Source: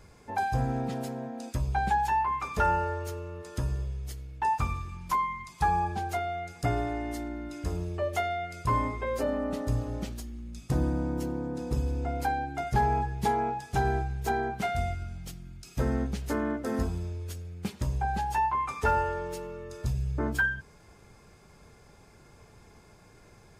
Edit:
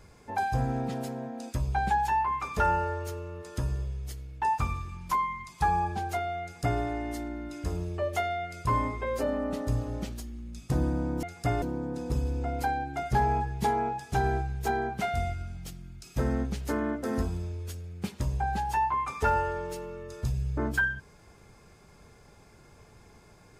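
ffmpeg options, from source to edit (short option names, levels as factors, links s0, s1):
-filter_complex "[0:a]asplit=3[s0][s1][s2];[s0]atrim=end=11.232[s3];[s1]atrim=start=6.418:end=6.812[s4];[s2]atrim=start=11.228[s5];[s3][s4]acrossfade=d=0.004:c1=hsin:c2=hsin[s6];[s6][s5]acrossfade=d=0.004:c1=hsin:c2=hsin"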